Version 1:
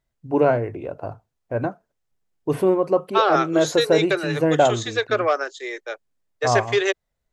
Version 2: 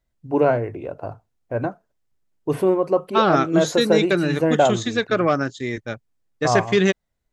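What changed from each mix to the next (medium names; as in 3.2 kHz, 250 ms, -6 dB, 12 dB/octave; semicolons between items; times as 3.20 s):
second voice: remove steep high-pass 380 Hz 48 dB/octave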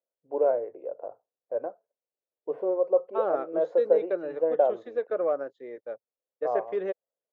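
master: add ladder band-pass 570 Hz, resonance 65%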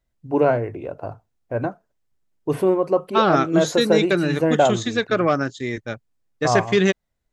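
master: remove ladder band-pass 570 Hz, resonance 65%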